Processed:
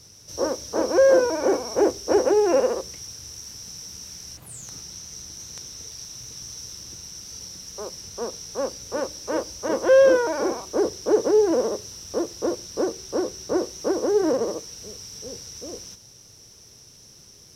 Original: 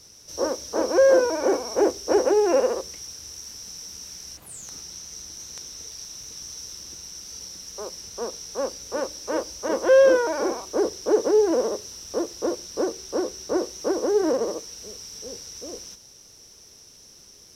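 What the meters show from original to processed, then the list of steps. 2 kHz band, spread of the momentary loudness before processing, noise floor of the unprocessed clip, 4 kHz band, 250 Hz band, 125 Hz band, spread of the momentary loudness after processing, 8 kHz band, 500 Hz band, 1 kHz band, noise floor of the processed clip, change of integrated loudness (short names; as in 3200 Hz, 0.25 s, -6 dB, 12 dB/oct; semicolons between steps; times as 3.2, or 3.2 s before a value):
0.0 dB, 18 LU, -50 dBFS, 0.0 dB, +1.0 dB, n/a, 18 LU, 0.0 dB, +0.5 dB, 0.0 dB, -49 dBFS, +0.5 dB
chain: bell 120 Hz +9.5 dB 1.1 oct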